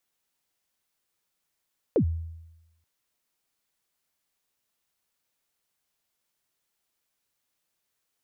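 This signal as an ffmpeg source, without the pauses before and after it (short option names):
-f lavfi -i "aevalsrc='0.15*pow(10,-3*t/0.98)*sin(2*PI*(550*0.086/log(82/550)*(exp(log(82/550)*min(t,0.086)/0.086)-1)+82*max(t-0.086,0)))':d=0.88:s=44100"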